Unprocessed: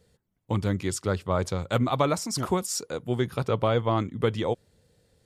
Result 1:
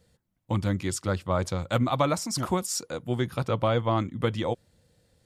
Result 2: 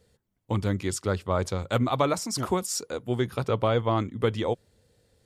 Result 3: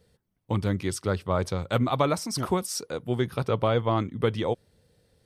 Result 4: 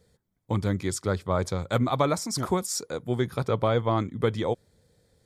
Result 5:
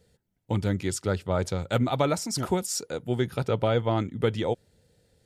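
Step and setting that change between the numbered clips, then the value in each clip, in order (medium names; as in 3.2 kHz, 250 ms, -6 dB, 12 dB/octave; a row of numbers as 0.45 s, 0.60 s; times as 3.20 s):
band-stop, frequency: 420 Hz, 160 Hz, 7.1 kHz, 2.8 kHz, 1.1 kHz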